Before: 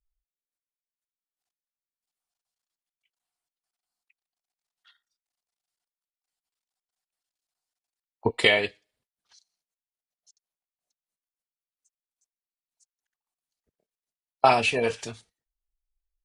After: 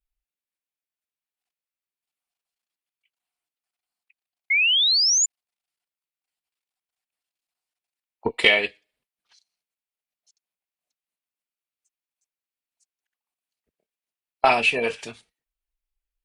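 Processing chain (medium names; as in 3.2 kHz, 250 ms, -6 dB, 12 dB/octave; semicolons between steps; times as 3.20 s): Chebyshev shaper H 2 -19 dB, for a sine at -4 dBFS; fifteen-band graphic EQ 100 Hz -10 dB, 2.5 kHz +6 dB, 6.3 kHz -4 dB; painted sound rise, 4.50–5.26 s, 2.1–7.2 kHz -19 dBFS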